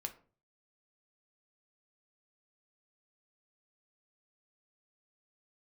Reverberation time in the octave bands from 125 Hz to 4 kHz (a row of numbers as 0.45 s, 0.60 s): 0.65 s, 0.50 s, 0.45 s, 0.35 s, 0.30 s, 0.25 s